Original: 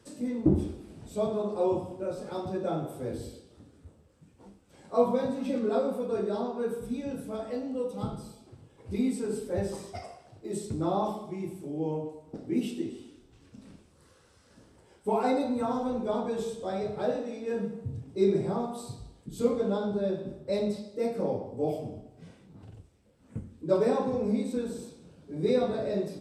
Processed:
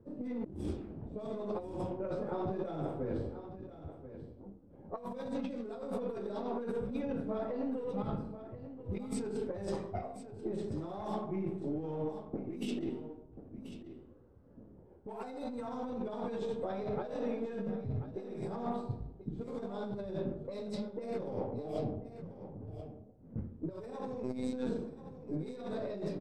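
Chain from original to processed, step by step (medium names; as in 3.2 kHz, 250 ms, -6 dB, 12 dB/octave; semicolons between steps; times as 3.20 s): partial rectifier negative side -3 dB; level-controlled noise filter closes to 500 Hz, open at -24.5 dBFS; 24.23–24.67 s: robot voice 127 Hz; compressor with a negative ratio -37 dBFS, ratio -1; on a send: delay 1036 ms -12.5 dB; on the sum: trim -1.5 dB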